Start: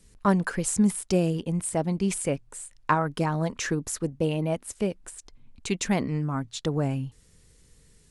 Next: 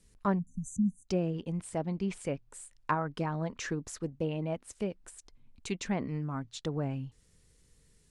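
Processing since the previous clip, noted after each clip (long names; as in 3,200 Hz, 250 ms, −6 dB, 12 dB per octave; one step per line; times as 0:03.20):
treble cut that deepens with the level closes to 2,300 Hz, closed at −19.5 dBFS
time-frequency box erased 0:00.39–0:01.07, 270–5,900 Hz
level −7 dB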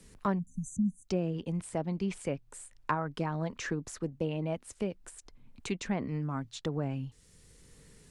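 multiband upward and downward compressor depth 40%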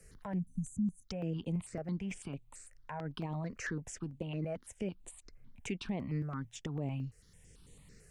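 brickwall limiter −26 dBFS, peak gain reduction 11.5 dB
step-sequenced phaser 9 Hz 960–5,200 Hz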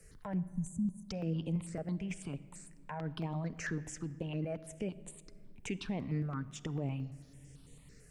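rectangular room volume 3,500 cubic metres, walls mixed, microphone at 0.43 metres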